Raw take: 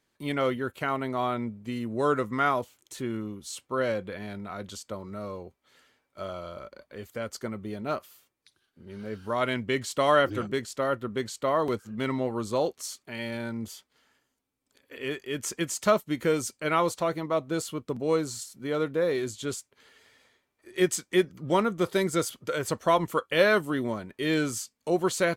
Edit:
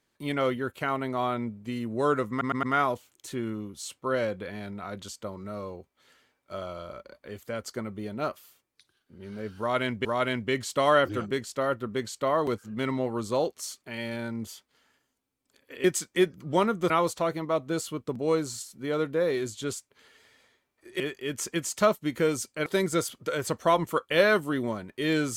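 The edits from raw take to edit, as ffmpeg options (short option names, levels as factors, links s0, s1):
-filter_complex "[0:a]asplit=9[s0][s1][s2][s3][s4][s5][s6][s7][s8];[s0]atrim=end=2.412[s9];[s1]atrim=start=2.298:end=2.412[s10];[s2]atrim=start=2.298:end=2.412[s11];[s3]atrim=start=2.298:end=9.722[s12];[s4]atrim=start=9.258:end=15.052[s13];[s5]atrim=start=20.808:end=21.872[s14];[s6]atrim=start=16.708:end=20.812[s15];[s7]atrim=start=15.048:end=16.712[s16];[s8]atrim=start=21.868[s17];[s9][s10]acrossfade=d=0.004:c1=hsin:c2=hsin[s18];[s18][s11]acrossfade=d=0.004:c1=hsin:c2=hsin[s19];[s19][s12]acrossfade=d=0.004:c1=hsin:c2=hsin[s20];[s20][s13]acrossfade=d=0.004:c1=hsin:c2=hsin[s21];[s21][s14]acrossfade=d=0.004:c1=hsin:c2=hsin[s22];[s22][s15]acrossfade=d=0.004:c1=hsin:c2=hsin[s23];[s23][s16]acrossfade=d=0.004:c1=hsin:c2=hsin[s24];[s24][s17]acrossfade=d=0.004:c1=hsin:c2=hsin"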